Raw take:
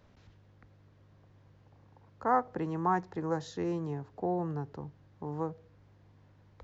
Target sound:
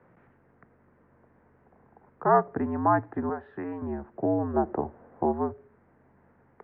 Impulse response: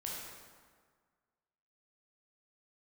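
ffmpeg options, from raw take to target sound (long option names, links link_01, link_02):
-filter_complex "[0:a]asettb=1/sr,asplit=3[link_01][link_02][link_03];[link_01]atrim=end=3.294[link_04];[link_02]atrim=start=3.29:end=3.82,asetpts=PTS-STARTPTS,afade=type=in:duration=0.004:curve=qsin,afade=type=out:start_time=0.526:duration=0.004:curve=qsin,acrossover=split=280|600[link_05][link_06][link_07];[link_05]acompressor=threshold=-52dB:ratio=4[link_08];[link_06]acompressor=threshold=-45dB:ratio=4[link_09];[link_07]acompressor=threshold=-39dB:ratio=4[link_10];[link_08][link_09][link_10]amix=inputs=3:normalize=0[link_11];[link_03]atrim=start=3.816[link_12];[link_04][link_11]acrossfade=duration=0.004:curve1=hsin:curve2=qsin[link_13];[link_13][link_12]acrossfade=duration=0.004:curve1=qsin:curve2=hsin,asplit=3[link_14][link_15][link_16];[link_14]afade=type=out:start_time=4.53:duration=0.02[link_17];[link_15]equalizer=frequency=670:width=0.63:gain=13.5,afade=type=in:start_time=4.53:duration=0.02,afade=type=out:start_time=5.31:duration=0.02[link_18];[link_16]afade=type=in:start_time=5.31:duration=0.02[link_19];[link_17][link_18][link_19]amix=inputs=3:normalize=0,highpass=frequency=190:width_type=q:width=0.5412,highpass=frequency=190:width_type=q:width=1.307,lowpass=frequency=2100:width_type=q:width=0.5176,lowpass=frequency=2100:width_type=q:width=0.7071,lowpass=frequency=2100:width_type=q:width=1.932,afreqshift=-68,volume=6.5dB"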